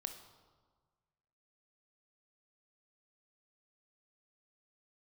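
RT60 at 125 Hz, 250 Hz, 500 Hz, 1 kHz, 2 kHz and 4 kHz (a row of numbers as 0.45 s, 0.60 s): 1.9 s, 1.5 s, 1.5 s, 1.5 s, 1.1 s, 1.0 s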